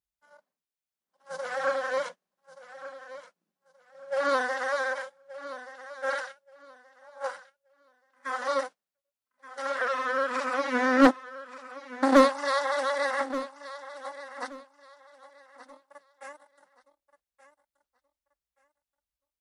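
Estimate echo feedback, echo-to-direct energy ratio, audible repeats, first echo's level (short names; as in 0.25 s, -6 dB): 24%, -14.5 dB, 2, -14.5 dB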